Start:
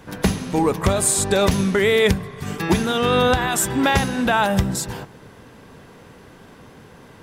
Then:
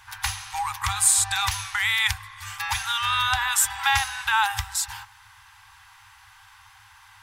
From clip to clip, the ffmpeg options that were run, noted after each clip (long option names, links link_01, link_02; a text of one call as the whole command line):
ffmpeg -i in.wav -af "tiltshelf=frequency=750:gain=-3.5,afftfilt=real='re*(1-between(b*sr/4096,110,760))':imag='im*(1-between(b*sr/4096,110,760))':win_size=4096:overlap=0.75,lowshelf=frequency=330:gain=-4,volume=-2.5dB" out.wav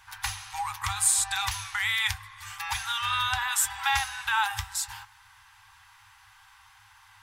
ffmpeg -i in.wav -af "flanger=delay=5.1:depth=3.3:regen=-67:speed=0.76:shape=sinusoidal" out.wav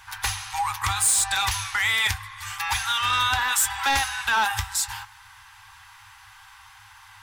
ffmpeg -i in.wav -af "asoftclip=type=tanh:threshold=-22.5dB,volume=7dB" out.wav